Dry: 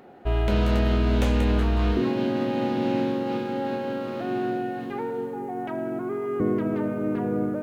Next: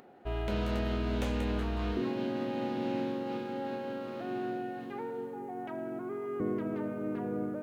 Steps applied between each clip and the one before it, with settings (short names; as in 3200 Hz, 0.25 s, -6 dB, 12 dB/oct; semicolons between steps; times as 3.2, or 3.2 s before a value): low shelf 110 Hz -5.5 dB; upward compressor, threshold -46 dBFS; gain -8 dB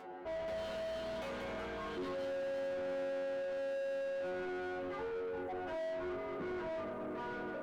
metallic resonator 88 Hz, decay 0.54 s, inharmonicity 0.002; overdrive pedal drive 32 dB, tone 1100 Hz, clips at -32 dBFS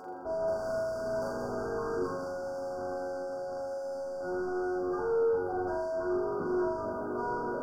brick-wall FIR band-stop 1600–4500 Hz; on a send: flutter echo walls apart 7.1 m, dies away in 0.83 s; on the sum: gain +5 dB